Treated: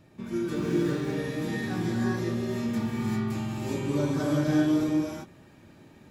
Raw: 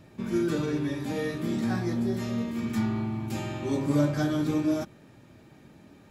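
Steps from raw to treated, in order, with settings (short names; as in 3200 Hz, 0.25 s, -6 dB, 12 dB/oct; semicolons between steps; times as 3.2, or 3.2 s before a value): non-linear reverb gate 0.42 s rising, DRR -4 dB; 0.55–1.17 running maximum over 3 samples; gain -4.5 dB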